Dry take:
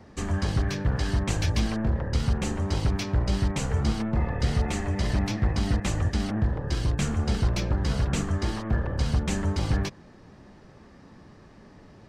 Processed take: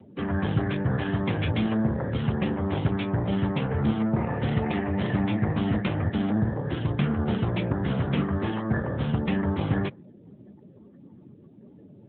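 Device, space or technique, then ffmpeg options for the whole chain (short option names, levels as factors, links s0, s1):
mobile call with aggressive noise cancelling: -af "highpass=100,afftdn=nr=24:nf=-46,volume=1.68" -ar 8000 -c:a libopencore_amrnb -b:a 10200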